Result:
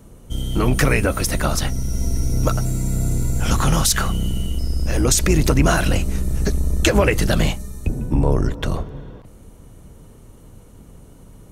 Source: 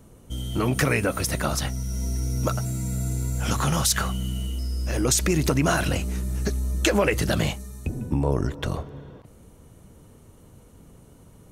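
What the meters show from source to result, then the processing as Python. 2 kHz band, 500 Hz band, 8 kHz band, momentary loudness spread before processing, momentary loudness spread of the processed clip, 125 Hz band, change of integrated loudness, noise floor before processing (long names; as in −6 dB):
+4.0 dB, +4.0 dB, +4.0 dB, 10 LU, 10 LU, +5.5 dB, +5.0 dB, −51 dBFS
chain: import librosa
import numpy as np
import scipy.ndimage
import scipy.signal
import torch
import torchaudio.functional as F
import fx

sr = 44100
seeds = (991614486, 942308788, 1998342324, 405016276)

y = fx.octave_divider(x, sr, octaves=2, level_db=1.0)
y = y * librosa.db_to_amplitude(4.0)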